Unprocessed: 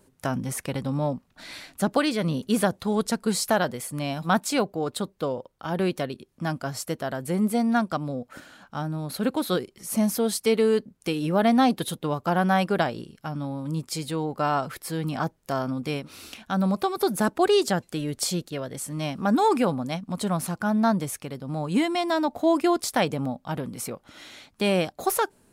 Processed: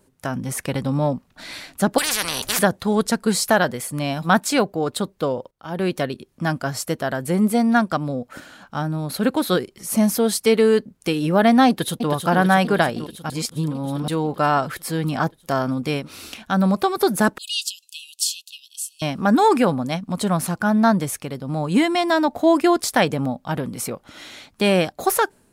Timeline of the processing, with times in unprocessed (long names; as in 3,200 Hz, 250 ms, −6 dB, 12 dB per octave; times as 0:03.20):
0:01.98–0:02.59: every bin compressed towards the loudest bin 10 to 1
0:05.51–0:06.03: fade in, from −16.5 dB
0:11.68–0:12.10: delay throw 320 ms, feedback 75%, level −6.5 dB
0:13.30–0:14.08: reverse
0:17.38–0:19.02: linear-phase brick-wall high-pass 2,500 Hz
whole clip: dynamic equaliser 1,700 Hz, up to +4 dB, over −44 dBFS, Q 3.6; automatic gain control gain up to 5.5 dB